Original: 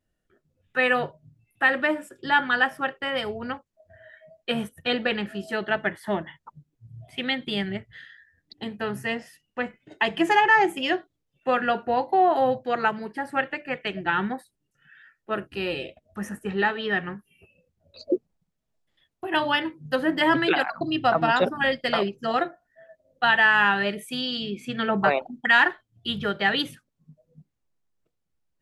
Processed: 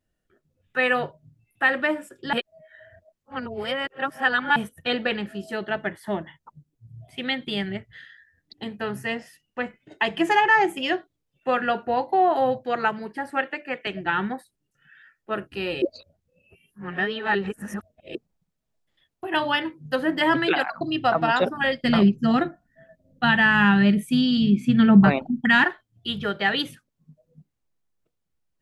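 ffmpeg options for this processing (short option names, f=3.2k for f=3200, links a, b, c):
-filter_complex "[0:a]asettb=1/sr,asplit=3[a][b][c];[a]atrim=end=5.174[d];[b]atrim=start=5.17:end=7.25,asetpts=PTS-STARTPTS,afade=t=in:d=0.004:c=qsin,afade=t=out:st=2.076:d=0.004:c=qsin,equalizer=f=1.8k:w=0.5:g=-3.5[e];[c]atrim=start=7.246[f];[d][e]acrossfade=d=0.004:c1=hsin:c2=qsin[g];[g][f]acrossfade=d=0.004:c1=qsin:c2=hsin,asettb=1/sr,asplit=3[h][i][j];[h]atrim=end=13.304[k];[i]atrim=start=13.3:end=13.87,asetpts=PTS-STARTPTS,afade=t=in:d=0.004:c=qsin,afade=t=out:st=0.566:d=0.004:c=qsin,highpass=f=200:w=0.5412,highpass=f=200:w=1.3066[l];[j]atrim=start=13.866[m];[k][l]acrossfade=d=0.004:c1=hsin:c2=qsin[n];[n][m]acrossfade=d=0.004:c1=qsin:c2=hsin,asettb=1/sr,asplit=3[o][p][q];[o]atrim=end=21.834[r];[p]atrim=start=21.83:end=25.64,asetpts=PTS-STARTPTS,afade=t=in:d=0.004:c=qsin,afade=t=out:st=3.806:d=0.004:c=qsin,lowshelf=f=330:t=q:w=1.5:g=12.5[s];[q]atrim=start=25.636[t];[r][s]acrossfade=d=0.004:c1=hsin:c2=qsin[u];[u][t]acrossfade=d=0.004:c1=qsin:c2=hsin,asplit=5[v][w][x][y][z];[v]atrim=end=2.332[aa];[w]atrim=start=2.328:end=4.562,asetpts=PTS-STARTPTS,areverse[ab];[x]atrim=start=4.558:end=15.822[ac];[y]atrim=start=15.818:end=18.152,asetpts=PTS-STARTPTS,areverse[ad];[z]atrim=start=18.148[ae];[aa][ab]acrossfade=d=0.004:c1=hsin:c2=hsin[af];[af][ac]acrossfade=d=0.004:c1=hsin:c2=hsin[ag];[ag][ad]acrossfade=d=0.004:c1=hsin:c2=hsin[ah];[ah][ae]acrossfade=d=0.004:c1=hsin:c2=hsin"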